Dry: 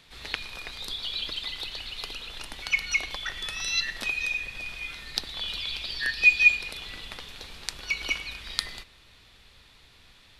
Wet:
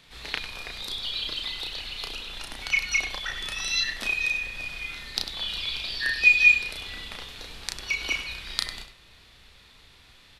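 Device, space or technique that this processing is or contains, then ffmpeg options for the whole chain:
slapback doubling: -filter_complex "[0:a]asplit=3[link_01][link_02][link_03];[link_02]adelay=33,volume=-4dB[link_04];[link_03]adelay=99,volume=-10.5dB[link_05];[link_01][link_04][link_05]amix=inputs=3:normalize=0"

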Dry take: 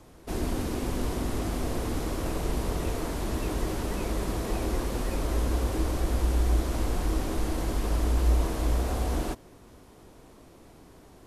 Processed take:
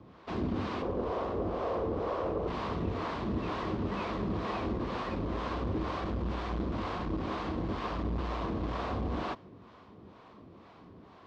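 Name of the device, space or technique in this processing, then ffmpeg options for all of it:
guitar amplifier with harmonic tremolo: -filter_complex "[0:a]asettb=1/sr,asplit=3[link_01][link_02][link_03];[link_01]atrim=end=0.824[link_04];[link_02]atrim=start=0.82:end=2.48,asetpts=PTS-STARTPTS,afade=type=in:duration=0.004:curve=qsin,afade=type=out:start_time=1.656:duration=0.004:curve=qsin,equalizer=frequency=125:width_type=o:width=1:gain=-6,equalizer=frequency=250:width_type=o:width=1:gain=-7,equalizer=frequency=500:width_type=o:width=1:gain=11,equalizer=frequency=2000:width_type=o:width=1:gain=-5,equalizer=frequency=4000:width_type=o:width=1:gain=-5,equalizer=frequency=8000:width_type=o:width=1:gain=-6[link_05];[link_03]atrim=start=2.476[link_06];[link_04][link_05]acrossfade=duration=0.004:curve1=hsin:curve2=qsin[link_07];[link_07][link_06]acrossfade=duration=0.004:curve1=qsin:curve2=hsin,acrossover=split=520[link_08][link_09];[link_08]aeval=exprs='val(0)*(1-0.7/2+0.7/2*cos(2*PI*2.1*n/s))':channel_layout=same[link_10];[link_09]aeval=exprs='val(0)*(1-0.7/2-0.7/2*cos(2*PI*2.1*n/s))':channel_layout=same[link_11];[link_10][link_11]amix=inputs=2:normalize=0,asoftclip=type=tanh:threshold=-24dB,highpass=88,equalizer=frequency=95:width_type=q:width=4:gain=5,equalizer=frequency=200:width_type=q:width=4:gain=6,equalizer=frequency=1100:width_type=q:width=4:gain=8,lowpass=frequency=4100:width=0.5412,lowpass=frequency=4100:width=1.3066,volume=1.5dB"

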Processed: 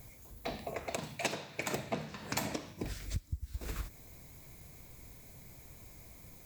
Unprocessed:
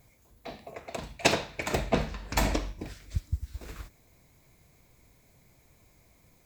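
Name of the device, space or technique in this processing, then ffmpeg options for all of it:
ASMR close-microphone chain: -filter_complex "[0:a]asettb=1/sr,asplit=3[link_01][link_02][link_03];[link_01]atrim=end=0.964[link_04];[link_02]atrim=start=0.96:end=2.83,asetpts=PTS-STARTPTS,afade=type=in:duration=0.004:curve=qsin,afade=type=out:start_time=1.866:duration=0.004:curve=qsin,highpass=frequency=110:width=0.5412,highpass=frequency=110:width=1.3066[link_05];[link_03]atrim=start=2.826[link_06];[link_04][link_05]acrossfade=duration=0.004:curve1=hsin:curve2=qsin[link_07];[link_07][link_06]acrossfade=duration=0.004:curve1=qsin:curve2=hsin,lowshelf=frequency=230:gain=3.5,acompressor=threshold=-39dB:ratio=6,highshelf=frequency=7800:gain=7.5,volume=4.5dB"

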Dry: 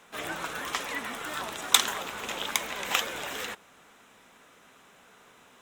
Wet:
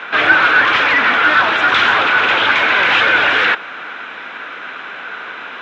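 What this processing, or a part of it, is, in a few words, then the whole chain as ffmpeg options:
overdrive pedal into a guitar cabinet: -filter_complex "[0:a]asplit=2[link_01][link_02];[link_02]highpass=frequency=720:poles=1,volume=36dB,asoftclip=type=tanh:threshold=-2.5dB[link_03];[link_01][link_03]amix=inputs=2:normalize=0,lowpass=frequency=6400:poles=1,volume=-6dB,highpass=77,equalizer=frequency=100:width_type=q:width=4:gain=6,equalizer=frequency=310:width_type=q:width=4:gain=5,equalizer=frequency=1500:width_type=q:width=4:gain=10,equalizer=frequency=2400:width_type=q:width=4:gain=4,lowpass=frequency=3800:width=0.5412,lowpass=frequency=3800:width=1.3066,volume=-4dB"

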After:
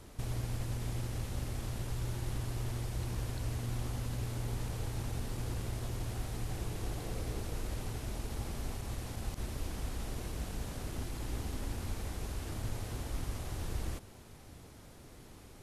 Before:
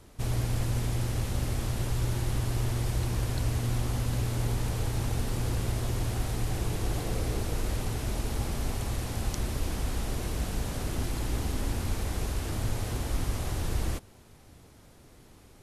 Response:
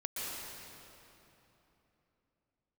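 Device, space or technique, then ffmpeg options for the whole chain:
de-esser from a sidechain: -filter_complex "[0:a]asplit=2[link_01][link_02];[link_02]highpass=6500,apad=whole_len=689183[link_03];[link_01][link_03]sidechaincompress=threshold=-51dB:ratio=8:attack=0.55:release=46,volume=1dB"

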